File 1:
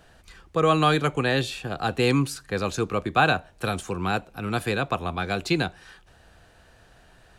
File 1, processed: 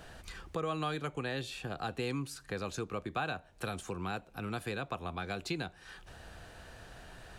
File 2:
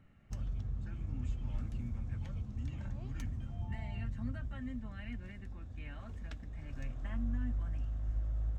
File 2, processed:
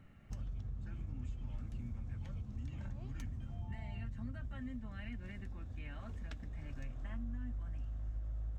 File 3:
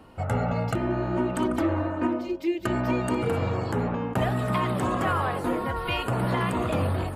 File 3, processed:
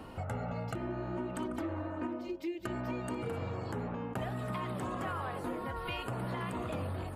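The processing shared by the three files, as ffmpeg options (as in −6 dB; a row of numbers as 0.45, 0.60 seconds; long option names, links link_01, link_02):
-af "acompressor=threshold=-46dB:ratio=2.5,volume=3.5dB"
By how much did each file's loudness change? −13.5, −4.0, −11.0 LU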